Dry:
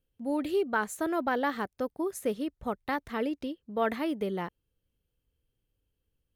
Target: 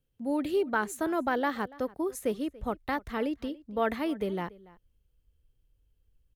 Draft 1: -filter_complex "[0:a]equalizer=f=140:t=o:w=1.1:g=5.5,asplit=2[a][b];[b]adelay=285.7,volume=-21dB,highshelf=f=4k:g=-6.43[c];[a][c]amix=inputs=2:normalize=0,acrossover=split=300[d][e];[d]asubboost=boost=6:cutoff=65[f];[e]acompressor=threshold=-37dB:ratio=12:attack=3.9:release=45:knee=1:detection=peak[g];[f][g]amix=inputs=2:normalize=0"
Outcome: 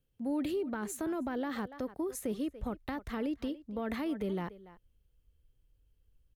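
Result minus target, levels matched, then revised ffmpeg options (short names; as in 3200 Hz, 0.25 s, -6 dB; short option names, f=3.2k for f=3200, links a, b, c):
compressor: peak gain reduction +15 dB
-filter_complex "[0:a]equalizer=f=140:t=o:w=1.1:g=5.5,asplit=2[a][b];[b]adelay=285.7,volume=-21dB,highshelf=f=4k:g=-6.43[c];[a][c]amix=inputs=2:normalize=0,acrossover=split=300[d][e];[d]asubboost=boost=6:cutoff=65[f];[f][e]amix=inputs=2:normalize=0"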